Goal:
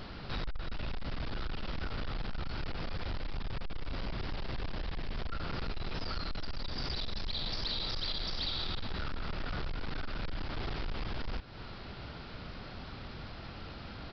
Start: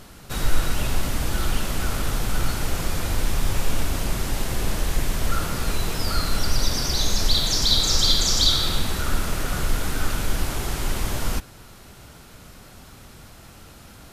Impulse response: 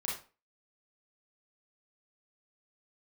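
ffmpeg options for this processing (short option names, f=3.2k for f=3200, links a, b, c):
-af "acompressor=threshold=-31dB:ratio=4,aresample=11025,asoftclip=type=hard:threshold=-33dB,aresample=44100,volume=1dB"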